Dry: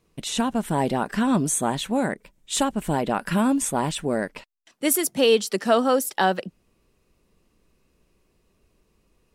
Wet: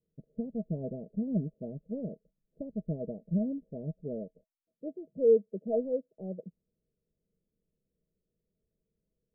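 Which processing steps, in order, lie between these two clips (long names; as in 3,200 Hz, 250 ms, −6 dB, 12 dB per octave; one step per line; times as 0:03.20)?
in parallel at −3.5 dB: soft clipping −20 dBFS, distortion −10 dB
on the sum: Chebyshev low-pass with heavy ripple 660 Hz, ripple 9 dB
expander for the loud parts 1.5 to 1, over −39 dBFS
level −4.5 dB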